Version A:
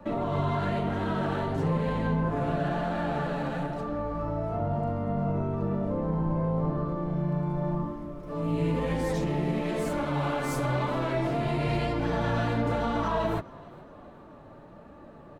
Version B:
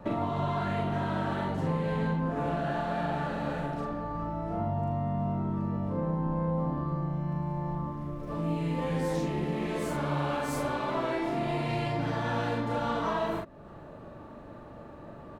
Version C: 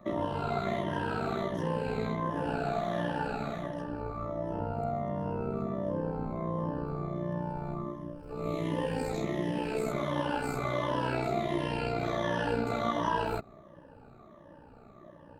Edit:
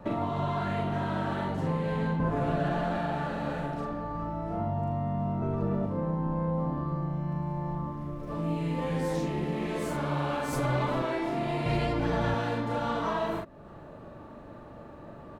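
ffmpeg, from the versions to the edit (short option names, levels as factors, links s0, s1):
-filter_complex "[0:a]asplit=4[s0][s1][s2][s3];[1:a]asplit=5[s4][s5][s6][s7][s8];[s4]atrim=end=2.202[s9];[s0]atrim=start=2.198:end=2.982[s10];[s5]atrim=start=2.978:end=5.422[s11];[s1]atrim=start=5.418:end=5.862[s12];[s6]atrim=start=5.858:end=10.532[s13];[s2]atrim=start=10.528:end=11.022[s14];[s7]atrim=start=11.018:end=11.662[s15];[s3]atrim=start=11.658:end=12.342[s16];[s8]atrim=start=12.338[s17];[s9][s10]acrossfade=d=0.004:c1=hsin:c2=hsin[s18];[s18][s11]acrossfade=d=0.004:c1=hsin:c2=hsin[s19];[s19][s12]acrossfade=d=0.004:c1=hsin:c2=hsin[s20];[s20][s13]acrossfade=d=0.004:c1=hsin:c2=hsin[s21];[s21][s14]acrossfade=d=0.004:c1=hsin:c2=hsin[s22];[s22][s15]acrossfade=d=0.004:c1=hsin:c2=hsin[s23];[s23][s16]acrossfade=d=0.004:c1=hsin:c2=hsin[s24];[s24][s17]acrossfade=d=0.004:c1=hsin:c2=hsin"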